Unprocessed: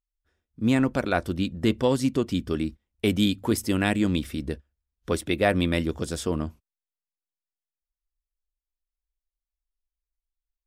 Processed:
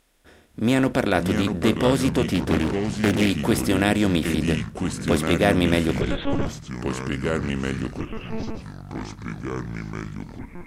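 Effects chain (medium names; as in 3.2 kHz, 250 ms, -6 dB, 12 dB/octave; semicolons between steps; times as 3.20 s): spectral levelling over time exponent 0.6; 6.01–6.47 s: monotone LPC vocoder at 8 kHz 280 Hz; ever faster or slower copies 424 ms, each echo -4 st, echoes 3, each echo -6 dB; 2.32–3.30 s: loudspeaker Doppler distortion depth 0.52 ms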